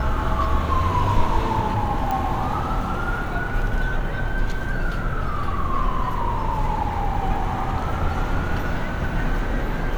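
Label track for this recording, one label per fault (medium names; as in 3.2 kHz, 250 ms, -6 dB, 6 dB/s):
2.110000	2.110000	pop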